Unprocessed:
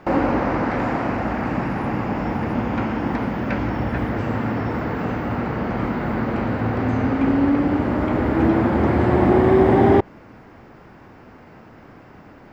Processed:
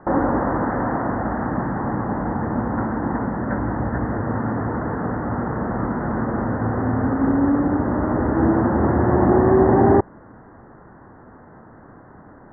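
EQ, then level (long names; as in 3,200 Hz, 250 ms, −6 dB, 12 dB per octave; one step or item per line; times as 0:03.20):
Butterworth low-pass 1,900 Hz 96 dB per octave
high-frequency loss of the air 250 metres
parametric band 1,000 Hz +2.5 dB 0.82 octaves
0.0 dB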